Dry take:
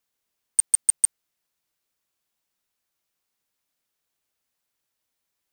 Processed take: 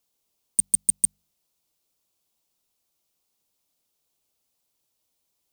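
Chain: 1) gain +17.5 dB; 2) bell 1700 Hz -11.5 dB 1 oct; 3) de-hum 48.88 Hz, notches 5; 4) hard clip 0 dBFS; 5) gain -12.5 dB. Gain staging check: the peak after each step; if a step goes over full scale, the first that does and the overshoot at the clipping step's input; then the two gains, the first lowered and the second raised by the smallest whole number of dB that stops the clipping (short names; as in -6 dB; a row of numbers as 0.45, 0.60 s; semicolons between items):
+8.5, +8.5, +8.5, 0.0, -12.5 dBFS; step 1, 8.5 dB; step 1 +8.5 dB, step 5 -3.5 dB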